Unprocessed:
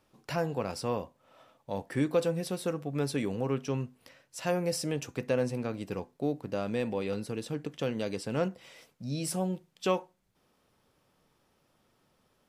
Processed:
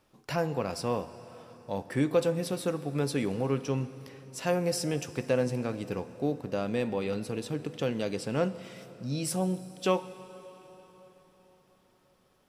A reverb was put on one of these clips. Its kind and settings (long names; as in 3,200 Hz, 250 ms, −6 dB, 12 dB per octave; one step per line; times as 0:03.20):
dense smooth reverb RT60 4.4 s, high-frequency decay 0.85×, DRR 13.5 dB
level +1.5 dB